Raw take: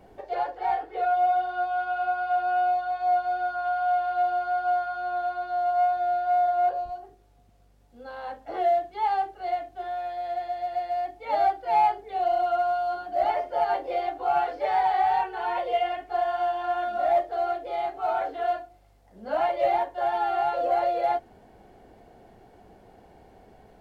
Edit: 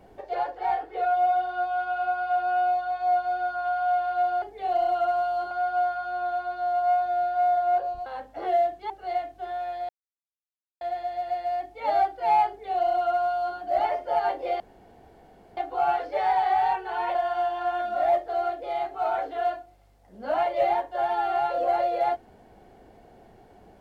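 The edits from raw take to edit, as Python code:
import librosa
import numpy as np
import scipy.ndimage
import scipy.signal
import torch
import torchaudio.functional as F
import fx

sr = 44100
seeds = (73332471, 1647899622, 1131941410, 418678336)

y = fx.edit(x, sr, fx.cut(start_s=6.97, length_s=1.21),
    fx.cut(start_s=9.02, length_s=0.25),
    fx.insert_silence(at_s=10.26, length_s=0.92),
    fx.duplicate(start_s=11.93, length_s=1.09, to_s=4.42),
    fx.insert_room_tone(at_s=14.05, length_s=0.97),
    fx.cut(start_s=15.63, length_s=0.55), tone=tone)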